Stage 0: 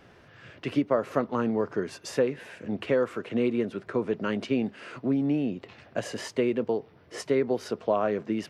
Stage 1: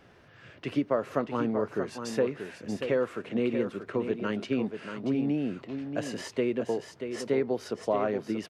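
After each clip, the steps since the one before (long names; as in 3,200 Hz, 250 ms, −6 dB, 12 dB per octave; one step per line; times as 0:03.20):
single-tap delay 634 ms −8 dB
level −2.5 dB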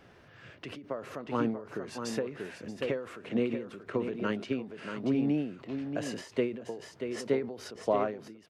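every ending faded ahead of time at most 110 dB per second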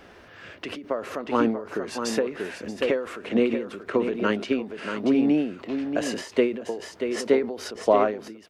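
parametric band 130 Hz −14.5 dB 0.62 octaves
level +9 dB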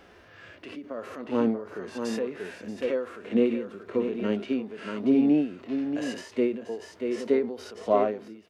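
harmonic and percussive parts rebalanced percussive −16 dB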